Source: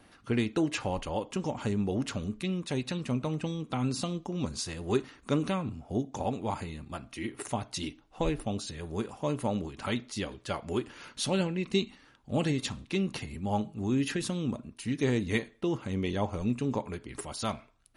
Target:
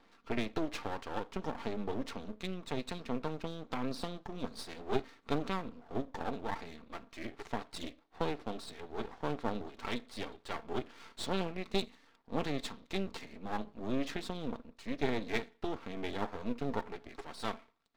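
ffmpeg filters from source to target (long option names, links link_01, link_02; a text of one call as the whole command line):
ffmpeg -i in.wav -af "highpass=300,equalizer=frequency=600:width_type=q:width=4:gain=-7,equalizer=frequency=1600:width_type=q:width=4:gain=-7,equalizer=frequency=2800:width_type=q:width=4:gain=-9,lowpass=frequency=4300:width=0.5412,lowpass=frequency=4300:width=1.3066,aecho=1:1:4.4:0.32,aeval=exprs='max(val(0),0)':channel_layout=same,volume=2dB" out.wav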